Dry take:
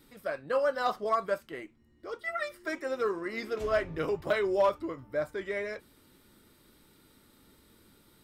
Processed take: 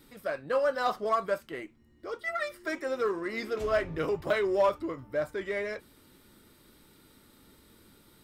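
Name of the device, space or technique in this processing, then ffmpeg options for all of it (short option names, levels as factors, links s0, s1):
parallel distortion: -filter_complex "[0:a]asplit=2[s0][s1];[s1]asoftclip=type=hard:threshold=0.0158,volume=0.316[s2];[s0][s2]amix=inputs=2:normalize=0"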